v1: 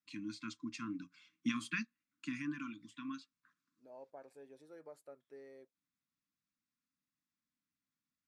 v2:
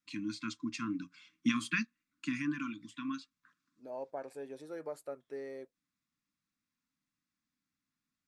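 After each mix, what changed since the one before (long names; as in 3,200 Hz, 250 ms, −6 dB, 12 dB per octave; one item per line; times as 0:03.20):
first voice +5.5 dB
second voice +11.5 dB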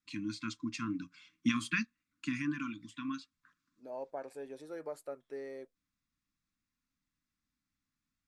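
first voice: remove high-pass filter 160 Hz 12 dB per octave
master: add low-shelf EQ 120 Hz −5 dB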